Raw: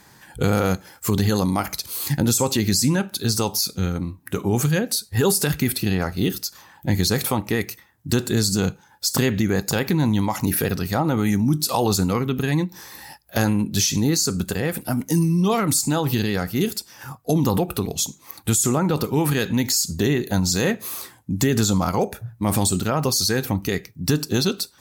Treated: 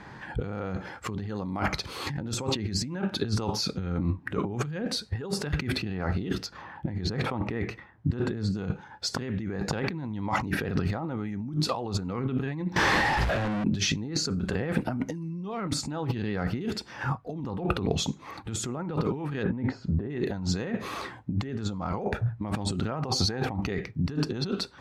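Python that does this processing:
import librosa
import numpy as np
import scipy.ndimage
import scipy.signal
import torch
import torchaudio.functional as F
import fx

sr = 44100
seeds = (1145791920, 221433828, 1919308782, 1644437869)

y = fx.high_shelf(x, sr, hz=3800.0, db=-10.5, at=(6.46, 8.55))
y = fx.clip_1bit(y, sr, at=(12.76, 13.64))
y = fx.lowpass(y, sr, hz=1300.0, slope=12, at=(19.42, 20.09), fade=0.02)
y = fx.peak_eq(y, sr, hz=780.0, db=10.5, octaves=0.49, at=(23.04, 23.7))
y = scipy.signal.sosfilt(scipy.signal.butter(2, 2300.0, 'lowpass', fs=sr, output='sos'), y)
y = fx.over_compress(y, sr, threshold_db=-30.0, ratio=-1.0)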